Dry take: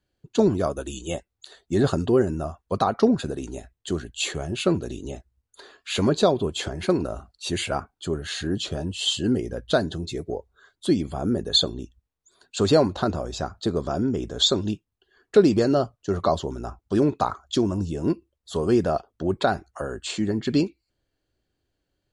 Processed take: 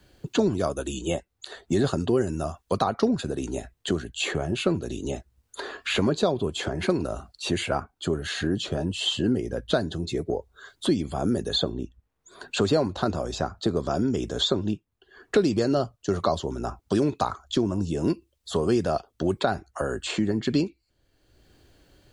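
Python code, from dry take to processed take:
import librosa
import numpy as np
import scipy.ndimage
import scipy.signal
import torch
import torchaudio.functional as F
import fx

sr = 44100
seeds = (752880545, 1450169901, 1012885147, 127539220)

y = fx.band_squash(x, sr, depth_pct=70)
y = y * librosa.db_to_amplitude(-1.5)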